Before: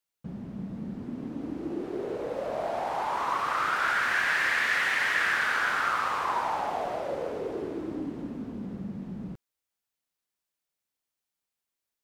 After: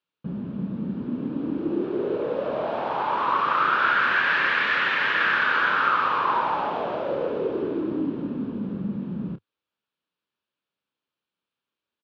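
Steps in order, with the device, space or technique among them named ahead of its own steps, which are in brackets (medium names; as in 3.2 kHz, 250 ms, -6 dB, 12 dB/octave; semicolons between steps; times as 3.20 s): guitar cabinet (cabinet simulation 100–3500 Hz, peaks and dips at 100 Hz -4 dB, 730 Hz -9 dB, 2 kHz -10 dB); doubling 29 ms -11 dB; trim +7.5 dB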